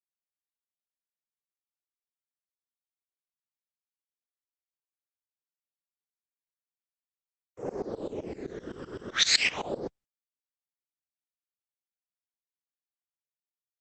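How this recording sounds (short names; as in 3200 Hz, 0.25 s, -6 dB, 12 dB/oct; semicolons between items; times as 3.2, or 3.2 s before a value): tremolo saw up 7.8 Hz, depth 100%; a quantiser's noise floor 10-bit, dither none; phasing stages 12, 0.31 Hz, lowest notch 720–4900 Hz; Opus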